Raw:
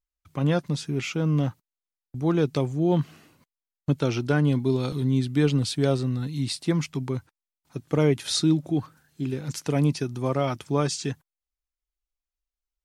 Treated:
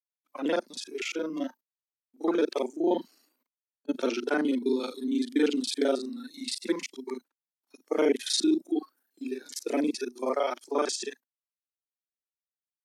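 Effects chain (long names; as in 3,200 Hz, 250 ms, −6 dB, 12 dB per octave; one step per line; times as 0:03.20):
reversed piece by piece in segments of 35 ms
noise reduction from a noise print of the clip's start 16 dB
elliptic high-pass filter 250 Hz, stop band 50 dB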